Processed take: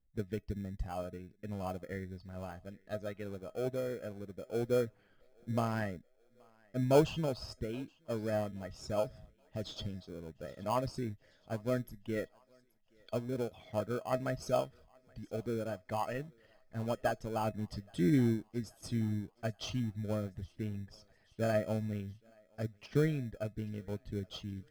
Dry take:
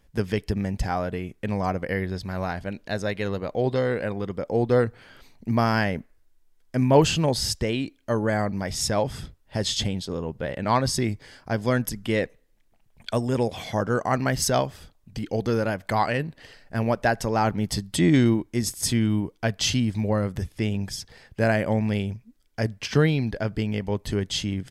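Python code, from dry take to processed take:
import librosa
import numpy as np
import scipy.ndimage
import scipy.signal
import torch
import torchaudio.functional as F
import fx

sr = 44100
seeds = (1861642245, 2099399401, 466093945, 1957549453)

p1 = fx.envelope_sharpen(x, sr, power=1.5)
p2 = fx.peak_eq(p1, sr, hz=8700.0, db=-9.5, octaves=1.1)
p3 = fx.sample_hold(p2, sr, seeds[0], rate_hz=1900.0, jitter_pct=0)
p4 = p2 + F.gain(torch.from_numpy(p3), -9.5).numpy()
p5 = fx.comb_fb(p4, sr, f0_hz=640.0, decay_s=0.18, harmonics='all', damping=0.0, mix_pct=70)
p6 = p5 + fx.echo_thinned(p5, sr, ms=825, feedback_pct=64, hz=420.0, wet_db=-21, dry=0)
y = fx.upward_expand(p6, sr, threshold_db=-43.0, expansion=1.5)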